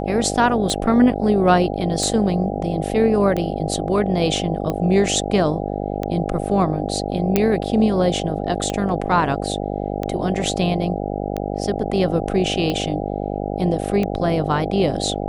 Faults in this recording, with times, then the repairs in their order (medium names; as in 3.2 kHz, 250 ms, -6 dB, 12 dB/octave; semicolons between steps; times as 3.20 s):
buzz 50 Hz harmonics 16 -25 dBFS
tick 45 rpm -11 dBFS
7.36 s: pop -3 dBFS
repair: de-click; de-hum 50 Hz, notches 16